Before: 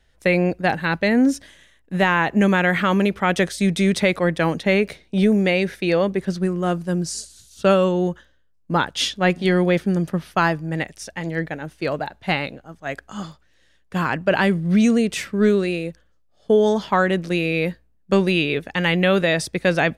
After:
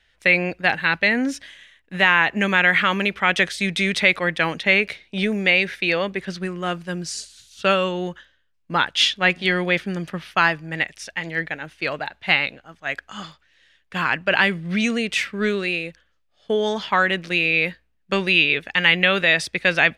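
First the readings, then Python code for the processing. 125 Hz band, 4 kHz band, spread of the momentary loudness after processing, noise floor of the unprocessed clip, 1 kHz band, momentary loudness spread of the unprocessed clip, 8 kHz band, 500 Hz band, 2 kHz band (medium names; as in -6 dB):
-7.0 dB, +5.5 dB, 13 LU, -59 dBFS, -0.5 dB, 12 LU, -2.0 dB, -5.0 dB, +5.5 dB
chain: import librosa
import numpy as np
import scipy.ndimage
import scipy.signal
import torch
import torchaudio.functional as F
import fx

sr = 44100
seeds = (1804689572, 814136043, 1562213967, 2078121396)

y = fx.peak_eq(x, sr, hz=2500.0, db=15.0, octaves=2.4)
y = F.gain(torch.from_numpy(y), -7.5).numpy()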